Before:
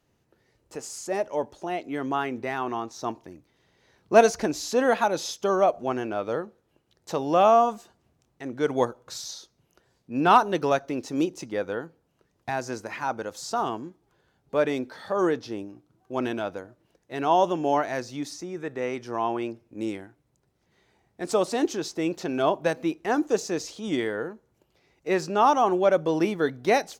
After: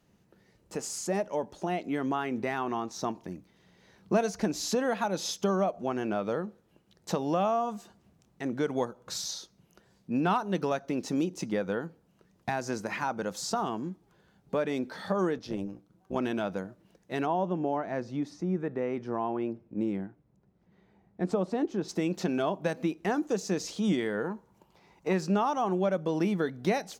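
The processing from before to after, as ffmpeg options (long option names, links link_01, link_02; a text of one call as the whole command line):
ffmpeg -i in.wav -filter_complex "[0:a]asettb=1/sr,asplit=3[link_01][link_02][link_03];[link_01]atrim=end=15.384[link_04];[link_02]atrim=start=15.38:end=16.16,asetpts=PTS-STARTPTS,afade=type=in:duration=0.004:curve=qsin,afade=type=out:start_time=0.776:duration=0.004:curve=qsin,tremolo=f=190:d=0.667[link_05];[link_03]atrim=start=16.156[link_06];[link_04][link_05]acrossfade=duration=0.004:curve1=hsin:curve2=qsin[link_07];[link_07][link_06]acrossfade=duration=0.004:curve1=qsin:curve2=hsin,asplit=3[link_08][link_09][link_10];[link_08]afade=type=out:start_time=17.25:duration=0.02[link_11];[link_09]lowpass=frequency=1000:poles=1,afade=type=in:start_time=17.25:duration=0.02,afade=type=out:start_time=21.88:duration=0.02[link_12];[link_10]afade=type=in:start_time=21.88:duration=0.02[link_13];[link_11][link_12][link_13]amix=inputs=3:normalize=0,asettb=1/sr,asplit=3[link_14][link_15][link_16];[link_14]atrim=end=24.244[link_17];[link_15]atrim=start=24.24:end=25.13,asetpts=PTS-STARTPTS,afade=type=in:duration=0.004:curve=qsin,afade=type=out:start_time=0.886:duration=0.004:curve=qsin,equalizer=frequency=950:width=2.6:gain=12.5[link_18];[link_16]atrim=start=25.126[link_19];[link_17][link_18]acrossfade=duration=0.004:curve1=hsin:curve2=qsin[link_20];[link_20][link_19]acrossfade=duration=0.004:curve1=qsin:curve2=hsin,acompressor=threshold=-30dB:ratio=3,equalizer=frequency=190:width=4.2:gain=12.5,volume=1.5dB" out.wav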